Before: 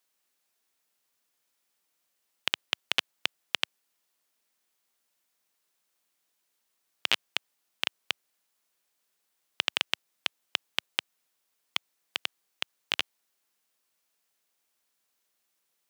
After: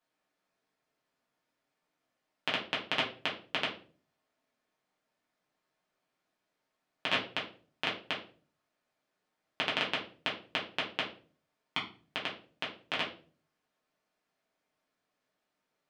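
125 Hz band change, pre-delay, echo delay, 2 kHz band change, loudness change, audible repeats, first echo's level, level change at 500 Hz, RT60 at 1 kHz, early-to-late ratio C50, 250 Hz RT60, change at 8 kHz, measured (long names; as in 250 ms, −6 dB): +8.0 dB, 5 ms, no echo audible, −1.0 dB, −2.5 dB, no echo audible, no echo audible, +6.5 dB, 0.35 s, 9.0 dB, 0.60 s, −12.0 dB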